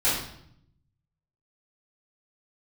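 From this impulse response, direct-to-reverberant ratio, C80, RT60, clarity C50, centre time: −12.0 dB, 6.0 dB, 0.70 s, 2.0 dB, 52 ms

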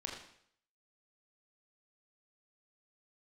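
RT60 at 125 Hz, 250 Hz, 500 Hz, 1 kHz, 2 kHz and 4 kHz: 0.65, 0.65, 0.65, 0.65, 0.65, 0.65 seconds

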